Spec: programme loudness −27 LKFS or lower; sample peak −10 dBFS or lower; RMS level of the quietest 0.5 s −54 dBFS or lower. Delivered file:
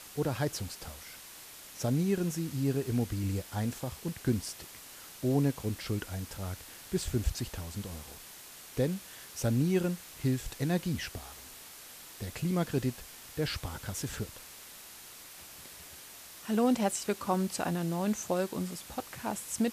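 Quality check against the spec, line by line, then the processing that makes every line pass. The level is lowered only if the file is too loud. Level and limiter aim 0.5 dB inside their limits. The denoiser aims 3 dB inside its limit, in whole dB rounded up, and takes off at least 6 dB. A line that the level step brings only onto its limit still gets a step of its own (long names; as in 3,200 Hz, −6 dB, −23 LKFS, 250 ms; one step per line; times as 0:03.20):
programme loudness −33.5 LKFS: in spec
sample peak −15.5 dBFS: in spec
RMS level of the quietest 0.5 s −50 dBFS: out of spec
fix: broadband denoise 7 dB, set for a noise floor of −50 dBFS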